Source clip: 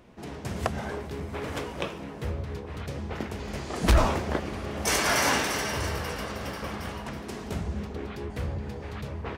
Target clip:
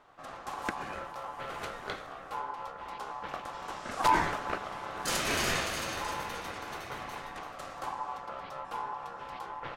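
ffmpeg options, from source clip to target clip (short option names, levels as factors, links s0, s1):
-af "aeval=exprs='val(0)*sin(2*PI*980*n/s)':c=same,asetrate=42336,aresample=44100,volume=0.708"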